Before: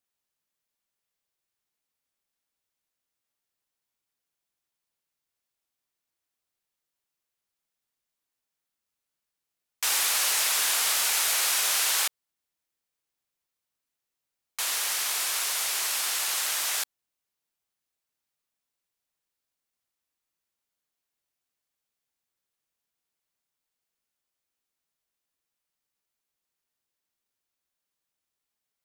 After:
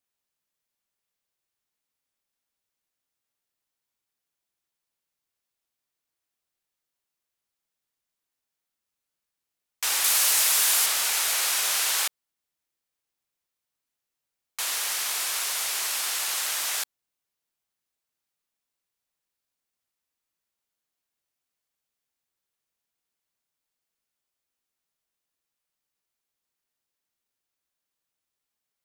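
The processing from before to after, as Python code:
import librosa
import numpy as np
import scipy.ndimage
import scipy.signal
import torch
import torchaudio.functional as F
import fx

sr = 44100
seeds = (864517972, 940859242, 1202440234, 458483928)

y = fx.high_shelf(x, sr, hz=6300.0, db=6.5, at=(10.04, 10.86))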